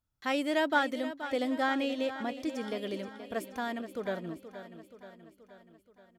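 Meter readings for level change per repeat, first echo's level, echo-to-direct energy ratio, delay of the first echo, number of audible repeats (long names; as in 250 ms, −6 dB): −4.5 dB, −12.0 dB, −10.0 dB, 477 ms, 5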